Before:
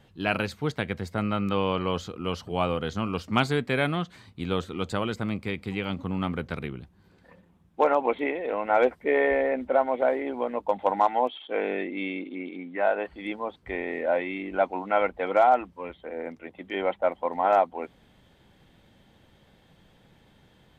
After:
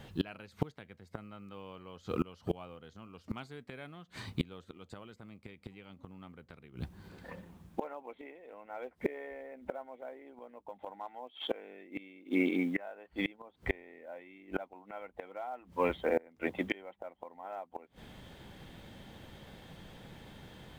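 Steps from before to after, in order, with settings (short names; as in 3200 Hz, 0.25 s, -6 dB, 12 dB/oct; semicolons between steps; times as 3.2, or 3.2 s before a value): companded quantiser 8-bit; flipped gate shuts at -24 dBFS, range -29 dB; gain +7 dB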